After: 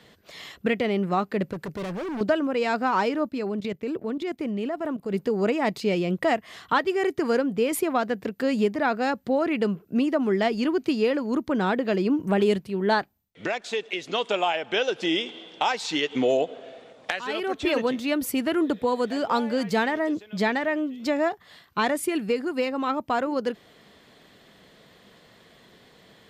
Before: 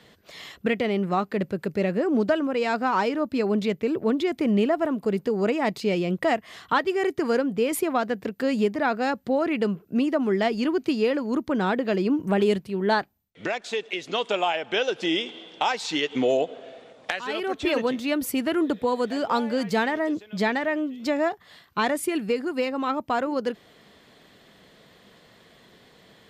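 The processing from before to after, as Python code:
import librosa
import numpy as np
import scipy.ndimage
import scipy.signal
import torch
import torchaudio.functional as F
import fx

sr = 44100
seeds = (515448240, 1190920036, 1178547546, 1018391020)

y = fx.clip_hard(x, sr, threshold_db=-29.5, at=(1.53, 2.21))
y = fx.level_steps(y, sr, step_db=14, at=(3.29, 5.14))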